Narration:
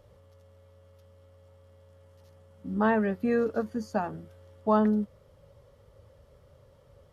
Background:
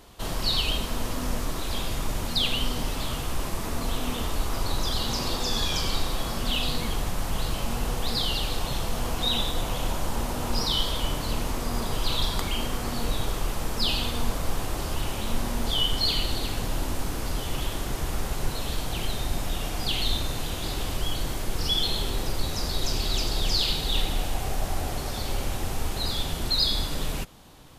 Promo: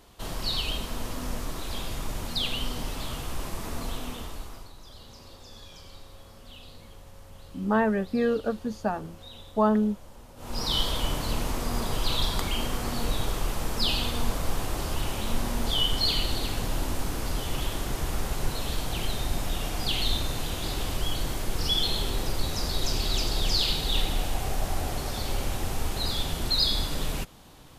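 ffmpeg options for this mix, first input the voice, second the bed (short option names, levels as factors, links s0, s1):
-filter_complex "[0:a]adelay=4900,volume=1.12[s0];[1:a]volume=6.68,afade=t=out:st=3.8:d=0.92:silence=0.141254,afade=t=in:st=10.36:d=0.4:silence=0.0944061[s1];[s0][s1]amix=inputs=2:normalize=0"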